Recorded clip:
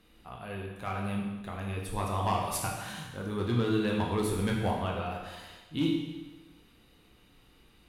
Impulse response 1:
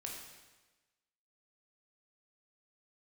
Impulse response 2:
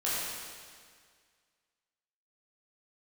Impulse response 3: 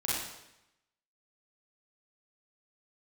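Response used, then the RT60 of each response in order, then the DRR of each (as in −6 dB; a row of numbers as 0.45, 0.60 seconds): 1; 1.2, 1.9, 0.90 seconds; −1.0, −9.5, −7.5 decibels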